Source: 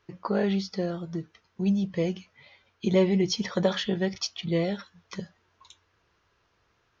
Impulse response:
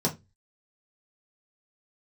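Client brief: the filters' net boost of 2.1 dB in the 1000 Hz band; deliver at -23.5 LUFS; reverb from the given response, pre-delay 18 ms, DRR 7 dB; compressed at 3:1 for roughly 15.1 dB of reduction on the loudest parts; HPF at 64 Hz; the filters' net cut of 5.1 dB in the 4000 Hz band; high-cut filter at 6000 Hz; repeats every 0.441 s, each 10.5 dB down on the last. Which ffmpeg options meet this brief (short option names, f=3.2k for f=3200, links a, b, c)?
-filter_complex "[0:a]highpass=64,lowpass=6k,equalizer=f=1k:t=o:g=3,equalizer=f=4k:t=o:g=-6,acompressor=threshold=-38dB:ratio=3,aecho=1:1:441|882|1323:0.299|0.0896|0.0269,asplit=2[a][b];[1:a]atrim=start_sample=2205,adelay=18[c];[b][c]afir=irnorm=-1:irlink=0,volume=-16dB[d];[a][d]amix=inputs=2:normalize=0,volume=11.5dB"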